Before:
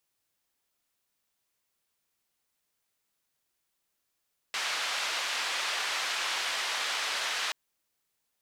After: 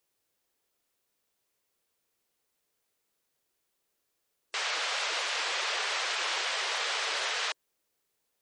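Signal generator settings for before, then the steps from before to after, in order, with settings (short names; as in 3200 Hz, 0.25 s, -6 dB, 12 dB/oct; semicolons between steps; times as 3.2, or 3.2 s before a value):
noise band 820–3900 Hz, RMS -32 dBFS 2.98 s
spectral gate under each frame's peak -20 dB strong; bell 440 Hz +7.5 dB 0.94 oct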